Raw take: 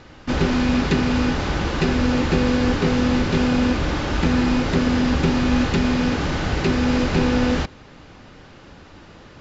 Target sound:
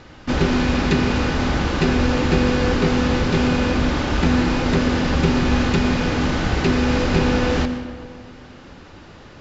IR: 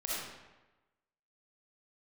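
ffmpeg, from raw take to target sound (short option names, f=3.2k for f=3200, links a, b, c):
-filter_complex "[0:a]asplit=2[a][b];[1:a]atrim=start_sample=2205,asetrate=25137,aresample=44100[c];[b][c]afir=irnorm=-1:irlink=0,volume=-15.5dB[d];[a][d]amix=inputs=2:normalize=0"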